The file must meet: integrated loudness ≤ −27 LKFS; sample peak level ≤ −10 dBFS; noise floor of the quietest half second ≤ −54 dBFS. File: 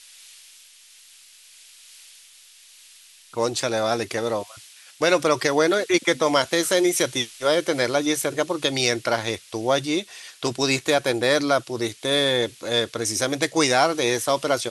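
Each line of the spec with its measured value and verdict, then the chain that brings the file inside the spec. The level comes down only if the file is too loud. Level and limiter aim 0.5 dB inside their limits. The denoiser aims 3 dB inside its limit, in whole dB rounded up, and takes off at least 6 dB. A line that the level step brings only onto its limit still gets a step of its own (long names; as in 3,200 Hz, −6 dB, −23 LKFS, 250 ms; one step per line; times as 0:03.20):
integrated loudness −22.0 LKFS: out of spec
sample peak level −4.5 dBFS: out of spec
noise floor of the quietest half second −50 dBFS: out of spec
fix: level −5.5 dB
brickwall limiter −10.5 dBFS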